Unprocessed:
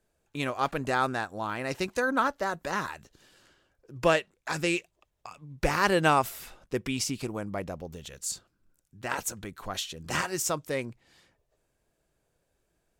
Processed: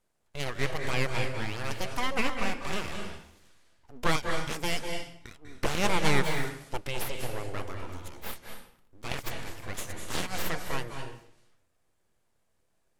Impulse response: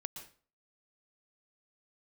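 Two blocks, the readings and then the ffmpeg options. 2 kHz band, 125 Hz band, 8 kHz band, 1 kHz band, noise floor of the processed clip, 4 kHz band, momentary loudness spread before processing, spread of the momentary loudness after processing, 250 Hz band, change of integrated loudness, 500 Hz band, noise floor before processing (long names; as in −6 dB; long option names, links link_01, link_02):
−2.0 dB, +1.5 dB, −4.5 dB, −5.0 dB, −72 dBFS, +1.0 dB, 15 LU, 16 LU, −3.0 dB, −3.0 dB, −4.5 dB, −76 dBFS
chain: -filter_complex "[0:a]aeval=exprs='abs(val(0))':channel_layout=same[link_01];[1:a]atrim=start_sample=2205,asetrate=25578,aresample=44100[link_02];[link_01][link_02]afir=irnorm=-1:irlink=0"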